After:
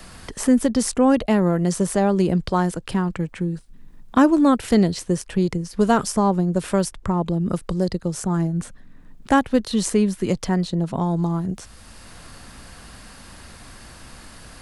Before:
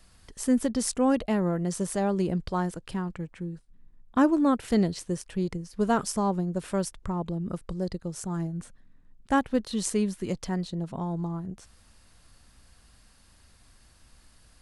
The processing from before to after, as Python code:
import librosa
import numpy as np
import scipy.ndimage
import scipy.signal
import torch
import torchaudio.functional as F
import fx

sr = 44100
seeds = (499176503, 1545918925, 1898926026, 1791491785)

y = fx.band_squash(x, sr, depth_pct=40)
y = y * librosa.db_to_amplitude(8.0)